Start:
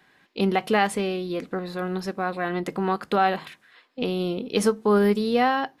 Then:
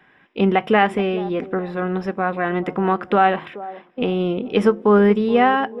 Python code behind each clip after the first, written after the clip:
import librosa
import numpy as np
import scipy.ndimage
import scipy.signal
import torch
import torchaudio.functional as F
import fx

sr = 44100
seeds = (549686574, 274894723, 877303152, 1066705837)

y = scipy.signal.savgol_filter(x, 25, 4, mode='constant')
y = fx.echo_wet_bandpass(y, sr, ms=428, feedback_pct=31, hz=470.0, wet_db=-15.0)
y = y * 10.0 ** (5.5 / 20.0)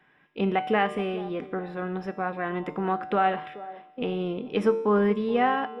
y = fx.comb_fb(x, sr, f0_hz=150.0, decay_s=0.99, harmonics='all', damping=0.0, mix_pct=70)
y = y * 10.0 ** (1.5 / 20.0)